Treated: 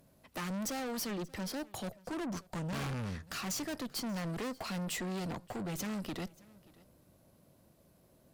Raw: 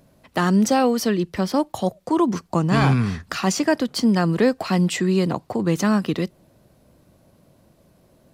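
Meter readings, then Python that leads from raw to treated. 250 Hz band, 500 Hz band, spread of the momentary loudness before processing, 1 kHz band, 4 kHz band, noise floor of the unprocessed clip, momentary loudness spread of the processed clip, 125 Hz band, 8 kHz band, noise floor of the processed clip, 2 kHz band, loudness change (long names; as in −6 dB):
−19.0 dB, −19.5 dB, 7 LU, −18.5 dB, −12.0 dB, −58 dBFS, 5 LU, −18.0 dB, −10.5 dB, −66 dBFS, −15.0 dB, −17.5 dB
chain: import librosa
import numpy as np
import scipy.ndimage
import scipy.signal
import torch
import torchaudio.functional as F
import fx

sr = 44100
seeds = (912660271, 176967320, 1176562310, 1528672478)

p1 = fx.tube_stage(x, sr, drive_db=28.0, bias=0.45)
p2 = fx.high_shelf(p1, sr, hz=10000.0, db=9.5)
p3 = p2 + fx.echo_single(p2, sr, ms=582, db=-23.0, dry=0)
y = p3 * librosa.db_to_amplitude(-7.5)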